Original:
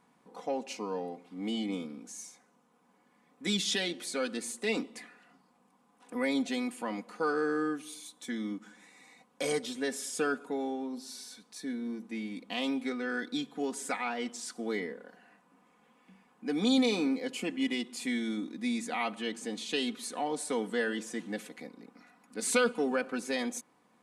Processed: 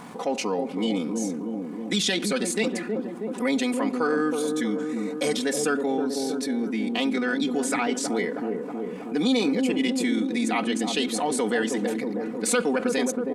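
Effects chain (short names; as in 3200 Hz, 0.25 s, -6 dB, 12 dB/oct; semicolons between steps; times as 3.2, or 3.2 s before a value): tempo 1.8×; on a send: dark delay 0.319 s, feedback 52%, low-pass 700 Hz, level -5 dB; on the sum: fast leveller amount 50%; gain +3.5 dB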